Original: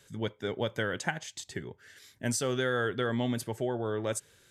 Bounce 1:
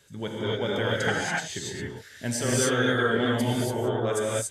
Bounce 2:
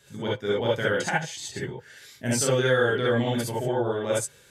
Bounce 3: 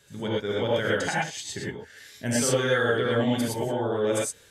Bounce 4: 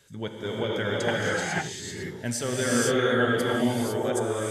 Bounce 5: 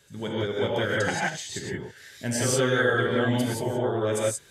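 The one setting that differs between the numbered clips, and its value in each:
non-linear reverb, gate: 310, 90, 140, 530, 200 ms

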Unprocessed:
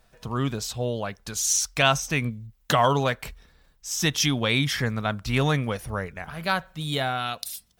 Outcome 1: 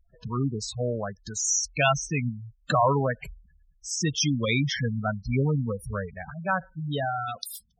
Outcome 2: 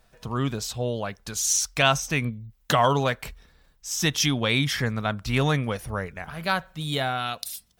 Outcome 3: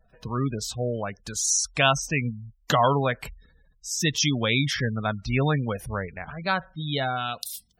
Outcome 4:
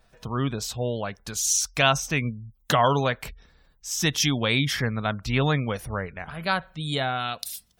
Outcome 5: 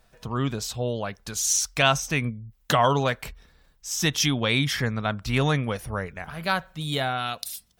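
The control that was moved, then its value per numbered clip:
spectral gate, under each frame's peak: -10, -60, -20, -35, -50 dB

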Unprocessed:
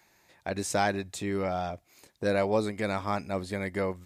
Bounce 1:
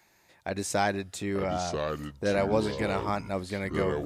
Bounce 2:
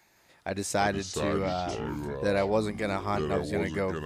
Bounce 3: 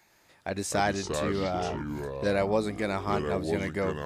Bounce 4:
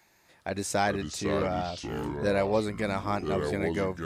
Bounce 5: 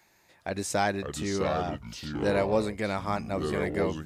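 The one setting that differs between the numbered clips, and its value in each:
echoes that change speed, time: 0.738, 0.168, 0.102, 0.255, 0.407 s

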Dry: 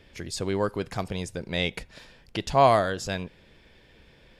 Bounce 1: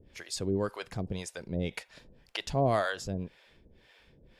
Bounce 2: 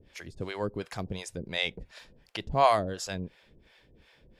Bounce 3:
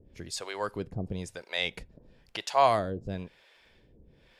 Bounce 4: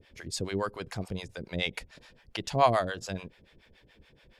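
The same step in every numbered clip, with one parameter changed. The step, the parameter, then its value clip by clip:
harmonic tremolo, rate: 1.9, 2.8, 1, 7 Hz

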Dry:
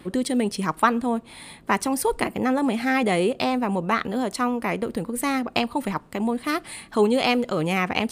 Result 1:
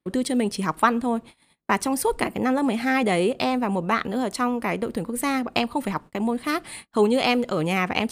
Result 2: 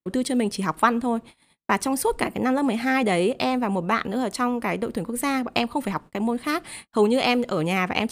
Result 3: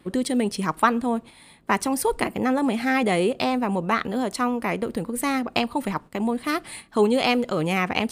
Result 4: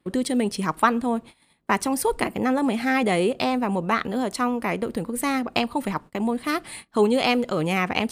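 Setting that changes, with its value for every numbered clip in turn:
gate, range: -36, -48, -8, -22 dB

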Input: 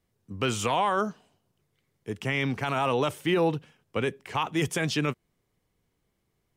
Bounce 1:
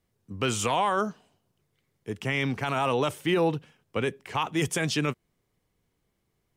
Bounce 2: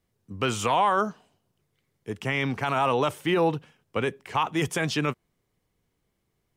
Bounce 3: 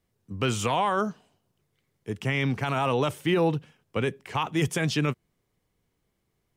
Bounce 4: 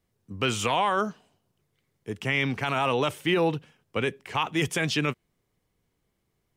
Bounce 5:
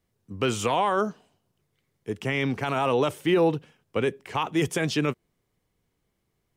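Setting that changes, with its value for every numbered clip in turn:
dynamic EQ, frequency: 8400, 1000, 130, 2600, 400 Hz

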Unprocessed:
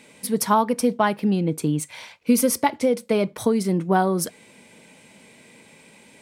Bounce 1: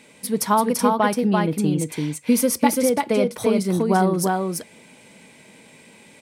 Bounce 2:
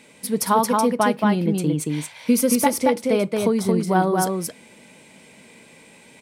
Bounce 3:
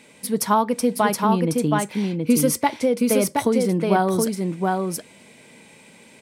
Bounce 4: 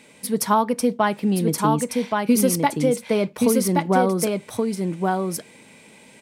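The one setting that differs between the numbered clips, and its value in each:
echo, time: 0.339, 0.225, 0.722, 1.124 s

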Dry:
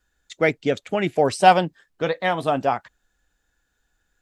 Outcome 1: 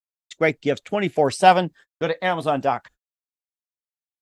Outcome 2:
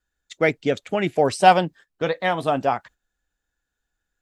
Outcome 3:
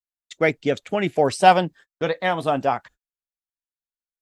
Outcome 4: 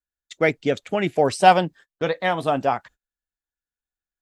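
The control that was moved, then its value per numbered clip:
gate, range: -58, -9, -40, -26 dB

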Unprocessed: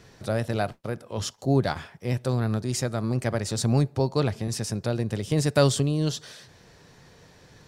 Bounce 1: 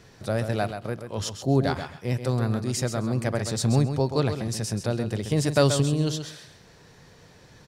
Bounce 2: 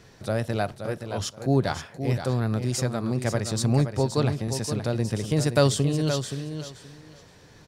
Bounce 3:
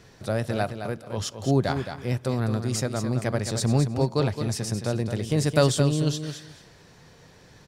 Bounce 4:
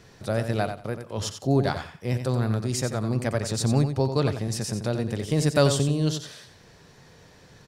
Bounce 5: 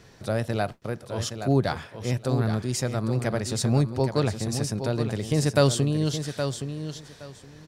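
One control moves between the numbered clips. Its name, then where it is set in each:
feedback echo, time: 132, 523, 217, 90, 819 ms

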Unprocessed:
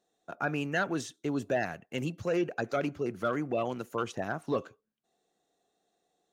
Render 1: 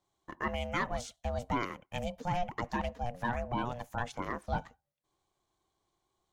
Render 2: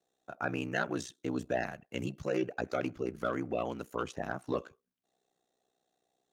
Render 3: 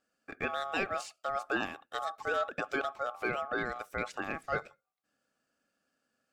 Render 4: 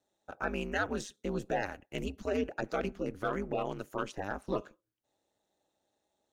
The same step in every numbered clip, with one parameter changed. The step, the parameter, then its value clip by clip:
ring modulator, frequency: 360, 31, 970, 100 Hz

